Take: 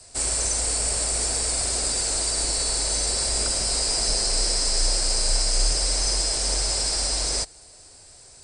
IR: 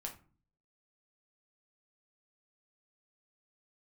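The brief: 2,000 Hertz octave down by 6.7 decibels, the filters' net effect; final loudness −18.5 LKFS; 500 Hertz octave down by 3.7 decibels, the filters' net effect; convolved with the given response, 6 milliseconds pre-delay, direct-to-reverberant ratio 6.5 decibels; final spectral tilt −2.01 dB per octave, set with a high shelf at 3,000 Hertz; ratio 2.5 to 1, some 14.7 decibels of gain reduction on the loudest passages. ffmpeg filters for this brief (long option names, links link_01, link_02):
-filter_complex "[0:a]equalizer=frequency=500:width_type=o:gain=-4,equalizer=frequency=2000:width_type=o:gain=-5,highshelf=frequency=3000:gain=-9,acompressor=threshold=-42dB:ratio=2.5,asplit=2[link_01][link_02];[1:a]atrim=start_sample=2205,adelay=6[link_03];[link_02][link_03]afir=irnorm=-1:irlink=0,volume=-4.5dB[link_04];[link_01][link_04]amix=inputs=2:normalize=0,volume=20dB"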